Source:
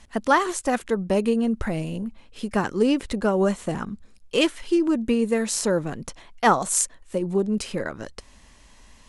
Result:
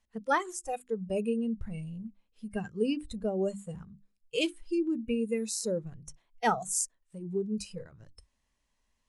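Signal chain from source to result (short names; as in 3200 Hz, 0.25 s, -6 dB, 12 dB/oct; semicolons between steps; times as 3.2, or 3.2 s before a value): notches 50/100/150/200/250/300/350 Hz; spectral noise reduction 18 dB; gain -8 dB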